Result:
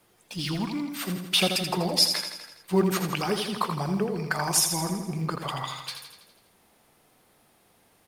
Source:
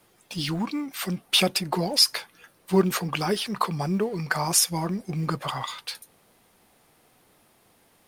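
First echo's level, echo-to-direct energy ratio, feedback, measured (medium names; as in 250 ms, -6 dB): -7.0 dB, -5.0 dB, 58%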